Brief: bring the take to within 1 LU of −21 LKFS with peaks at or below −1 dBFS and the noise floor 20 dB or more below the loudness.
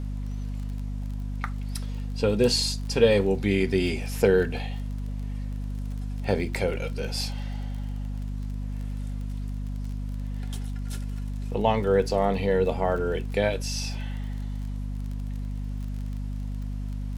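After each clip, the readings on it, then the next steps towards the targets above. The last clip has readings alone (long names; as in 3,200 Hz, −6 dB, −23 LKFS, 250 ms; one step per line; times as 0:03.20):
crackle rate 25 per second; mains hum 50 Hz; hum harmonics up to 250 Hz; level of the hum −29 dBFS; integrated loudness −28.5 LKFS; sample peak −7.0 dBFS; target loudness −21.0 LKFS
→ click removal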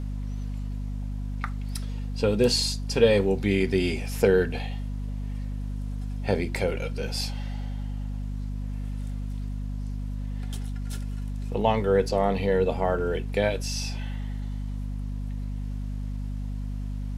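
crackle rate 0 per second; mains hum 50 Hz; hum harmonics up to 250 Hz; level of the hum −29 dBFS
→ hum removal 50 Hz, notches 5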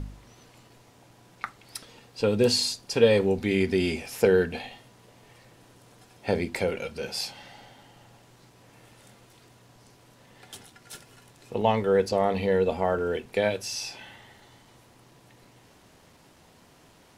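mains hum none found; integrated loudness −26.0 LKFS; sample peak −7.0 dBFS; target loudness −21.0 LKFS
→ level +5 dB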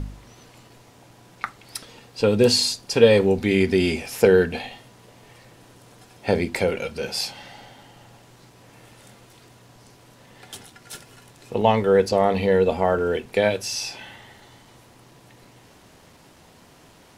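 integrated loudness −21.0 LKFS; sample peak −2.0 dBFS; background noise floor −52 dBFS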